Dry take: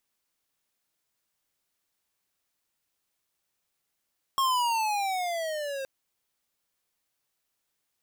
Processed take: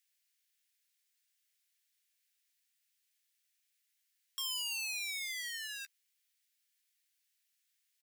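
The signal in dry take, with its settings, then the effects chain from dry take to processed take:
gliding synth tone square, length 1.47 s, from 1.09 kHz, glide -12.5 st, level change -10 dB, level -24 dB
doubling 13 ms -13.5 dB; saturation -28.5 dBFS; steep high-pass 1.7 kHz 36 dB/octave

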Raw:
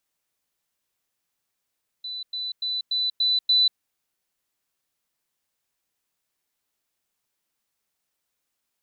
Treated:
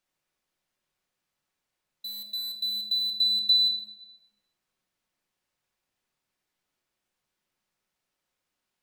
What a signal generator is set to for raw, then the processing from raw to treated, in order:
level ladder 3.99 kHz -30.5 dBFS, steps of 3 dB, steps 6, 0.19 s 0.10 s
low-pass 3.9 kHz 6 dB/octave; in parallel at -4 dB: small samples zeroed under -34 dBFS; on the sum: simulated room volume 740 m³, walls mixed, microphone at 1 m

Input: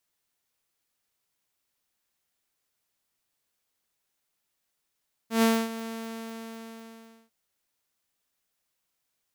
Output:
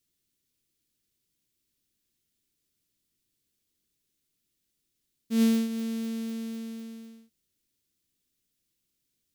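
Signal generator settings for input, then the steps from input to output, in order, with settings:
ADSR saw 226 Hz, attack 123 ms, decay 260 ms, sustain -15.5 dB, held 0.53 s, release 1470 ms -15.5 dBFS
FFT filter 330 Hz 0 dB, 780 Hz -23 dB, 3.5 kHz -7 dB; in parallel at +3 dB: compression, threshold -36 dBFS

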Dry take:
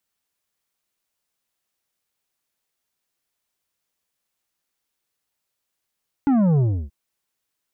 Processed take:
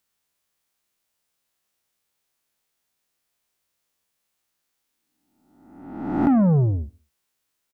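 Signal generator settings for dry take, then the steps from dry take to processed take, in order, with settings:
sub drop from 290 Hz, over 0.63 s, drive 8.5 dB, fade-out 0.31 s, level -15.5 dB
reverse spectral sustain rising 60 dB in 1.06 s; feedback delay 69 ms, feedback 44%, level -22.5 dB

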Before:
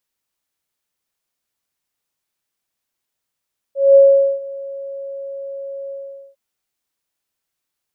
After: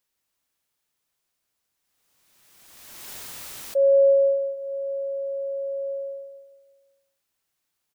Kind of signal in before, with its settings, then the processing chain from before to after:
ADSR sine 551 Hz, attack 204 ms, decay 440 ms, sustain -22 dB, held 2.16 s, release 444 ms -4 dBFS
compression, threshold -16 dBFS; on a send: feedback delay 172 ms, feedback 41%, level -6 dB; on the sum: swell ahead of each attack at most 30 dB/s

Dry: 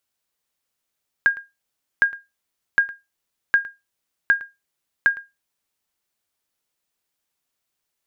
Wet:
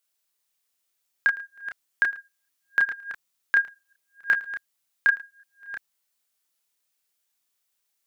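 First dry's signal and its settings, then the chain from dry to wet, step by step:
sonar ping 1.62 kHz, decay 0.21 s, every 0.76 s, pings 6, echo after 0.11 s, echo -20 dB -7.5 dBFS
chunks repeated in reverse 491 ms, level -11 dB; tilt EQ +2 dB/octave; chorus voices 4, 0.32 Hz, delay 30 ms, depth 3.8 ms

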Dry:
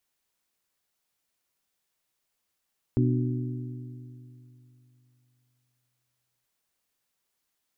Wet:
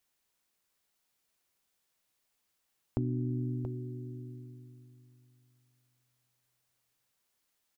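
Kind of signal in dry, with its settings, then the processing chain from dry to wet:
metal hit bell, length 3.48 s, lowest mode 124 Hz, modes 4, decay 3.09 s, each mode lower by 3 dB, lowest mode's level -21 dB
compression, threshold -29 dBFS; delay 680 ms -8 dB

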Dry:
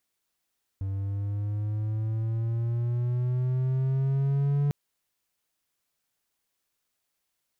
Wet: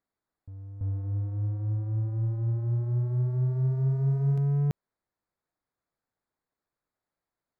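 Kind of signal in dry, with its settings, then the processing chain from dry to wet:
gliding synth tone triangle, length 3.90 s, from 96.4 Hz, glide +7 st, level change +6.5 dB, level -19.5 dB
local Wiener filter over 15 samples; on a send: reverse echo 334 ms -10.5 dB

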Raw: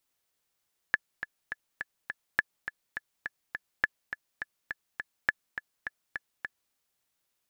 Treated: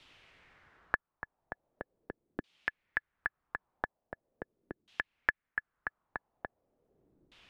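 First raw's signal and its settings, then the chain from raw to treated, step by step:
metronome 207 bpm, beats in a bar 5, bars 4, 1.72 kHz, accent 11 dB -9.5 dBFS
bass shelf 160 Hz +7.5 dB; LFO low-pass saw down 0.41 Hz 300–3300 Hz; three bands compressed up and down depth 70%

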